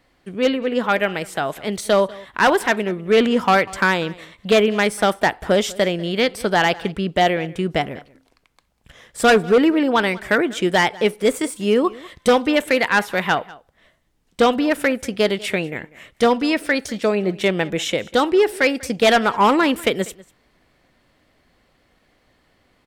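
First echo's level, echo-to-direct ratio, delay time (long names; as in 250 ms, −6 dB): −21.5 dB, −21.5 dB, 194 ms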